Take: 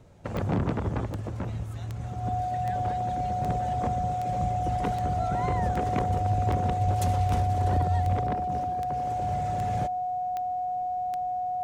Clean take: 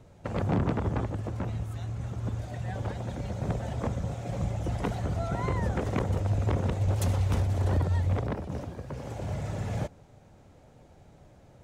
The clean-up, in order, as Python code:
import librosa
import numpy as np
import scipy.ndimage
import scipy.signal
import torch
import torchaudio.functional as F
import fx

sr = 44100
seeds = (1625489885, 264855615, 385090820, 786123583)

y = fx.fix_declick_ar(x, sr, threshold=10.0)
y = fx.notch(y, sr, hz=730.0, q=30.0)